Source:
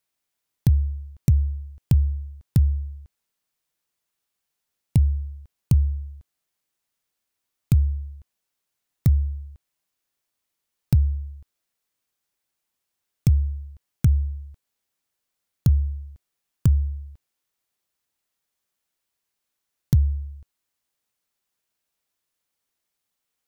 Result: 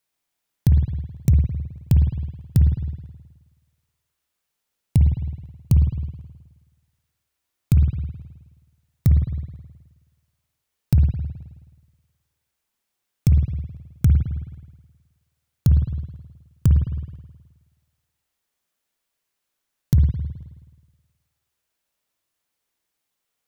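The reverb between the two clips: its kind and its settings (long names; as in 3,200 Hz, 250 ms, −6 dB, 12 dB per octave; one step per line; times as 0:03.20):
spring reverb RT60 1.3 s, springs 53 ms, chirp 60 ms, DRR 3 dB
level +1 dB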